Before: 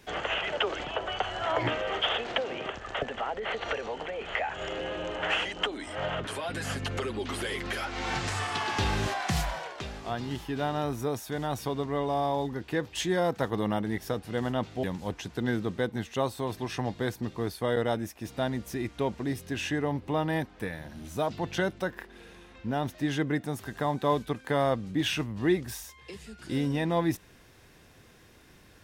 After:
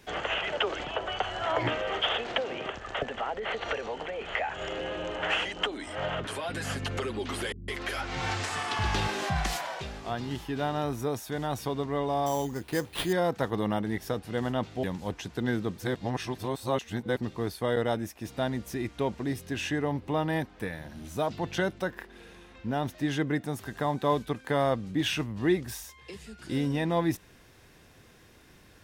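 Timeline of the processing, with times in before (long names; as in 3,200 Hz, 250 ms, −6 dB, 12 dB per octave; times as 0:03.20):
0:07.52–0:09.81: multiband delay without the direct sound lows, highs 160 ms, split 220 Hz
0:12.26–0:13.13: sample-rate reduction 6,700 Hz
0:15.78–0:17.17: reverse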